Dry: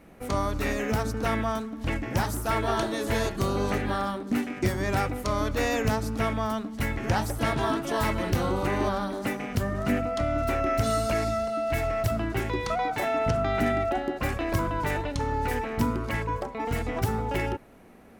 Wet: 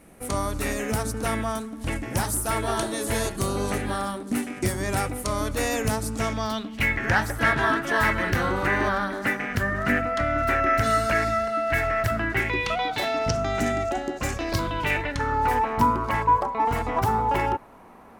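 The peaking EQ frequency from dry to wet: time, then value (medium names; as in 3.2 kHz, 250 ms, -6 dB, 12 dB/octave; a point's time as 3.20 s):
peaking EQ +14 dB 0.83 oct
6.05 s 9.7 kHz
7.02 s 1.7 kHz
12.26 s 1.7 kHz
13.51 s 6.9 kHz
14.29 s 6.9 kHz
15.50 s 990 Hz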